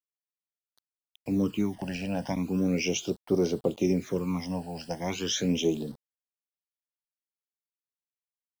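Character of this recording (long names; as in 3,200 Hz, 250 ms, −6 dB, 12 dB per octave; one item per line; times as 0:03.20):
a quantiser's noise floor 8 bits, dither none
phaser sweep stages 12, 0.37 Hz, lowest notch 360–2,500 Hz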